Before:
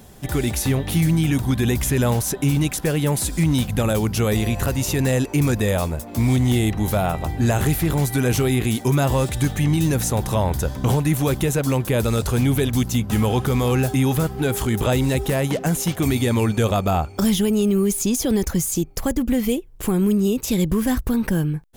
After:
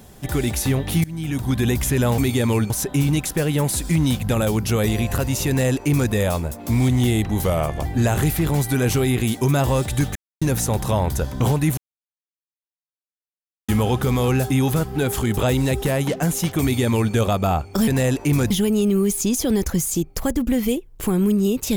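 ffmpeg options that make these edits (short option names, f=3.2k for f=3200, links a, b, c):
-filter_complex "[0:a]asplit=12[a][b][c][d][e][f][g][h][i][j][k][l];[a]atrim=end=1.04,asetpts=PTS-STARTPTS,afade=t=out:st=1.036:d=0.004:c=hsin:silence=0.0749894[m];[b]atrim=start=1.04:end=2.182,asetpts=PTS-STARTPTS,afade=t=in:d=0.52:silence=0.0749894[n];[c]atrim=start=16.048:end=16.572[o];[d]atrim=start=2.178:end=6.934[p];[e]atrim=start=6.93:end=7.29,asetpts=PTS-STARTPTS,asetrate=39249,aresample=44100,atrim=end_sample=17838,asetpts=PTS-STARTPTS[q];[f]atrim=start=7.286:end=9.59,asetpts=PTS-STARTPTS,afade=t=out:st=2.3:d=0.004:c=hsin[r];[g]atrim=start=9.59:end=9.85,asetpts=PTS-STARTPTS,volume=0[s];[h]atrim=start=9.85:end=11.21,asetpts=PTS-STARTPTS,afade=t=in:d=0.004:c=hsin,afade=t=out:st=1.356:d=0.004:c=hsin[t];[i]atrim=start=11.21:end=13.12,asetpts=PTS-STARTPTS,volume=0[u];[j]atrim=start=13.12:end=17.312,asetpts=PTS-STARTPTS,afade=t=in:d=0.004:c=hsin[v];[k]atrim=start=4.958:end=5.592[w];[l]atrim=start=17.308[x];[m][n]concat=n=2:v=0:a=1[y];[y][o]acrossfade=d=0.004:c1=hsin:c2=hsin[z];[z][p]acrossfade=d=0.004:c1=hsin:c2=hsin[aa];[aa][q]acrossfade=d=0.004:c1=hsin:c2=hsin[ab];[r][s][t][u][v]concat=n=5:v=0:a=1[ac];[ab][ac]acrossfade=d=0.004:c1=hsin:c2=hsin[ad];[ad][w]acrossfade=d=0.004:c1=hsin:c2=hsin[ae];[ae][x]acrossfade=d=0.004:c1=hsin:c2=hsin"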